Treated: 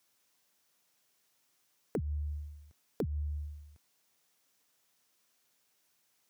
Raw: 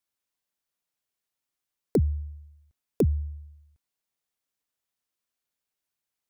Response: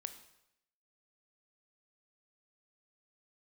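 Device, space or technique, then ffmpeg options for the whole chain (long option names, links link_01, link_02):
broadcast voice chain: -af "highpass=110,deesser=0.9,acompressor=threshold=-40dB:ratio=4,equalizer=frequency=5800:width_type=o:width=0.38:gain=3,alimiter=level_in=9dB:limit=-24dB:level=0:latency=1:release=179,volume=-9dB,volume=12.5dB"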